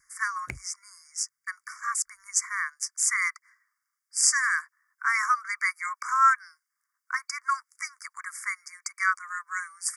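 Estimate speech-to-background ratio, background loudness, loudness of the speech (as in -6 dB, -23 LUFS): 15.5 dB, -43.0 LUFS, -27.5 LUFS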